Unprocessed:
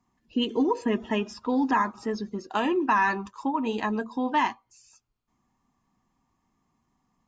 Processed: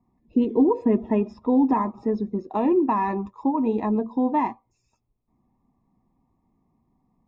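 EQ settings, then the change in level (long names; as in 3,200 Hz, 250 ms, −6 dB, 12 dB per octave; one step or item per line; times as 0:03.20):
moving average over 29 samples
+6.5 dB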